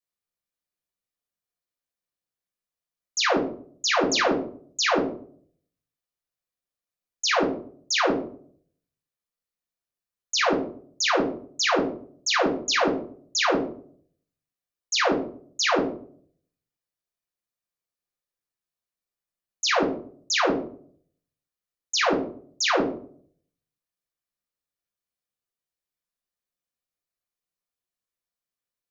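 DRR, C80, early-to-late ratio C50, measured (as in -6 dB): -1.5 dB, 11.0 dB, 5.5 dB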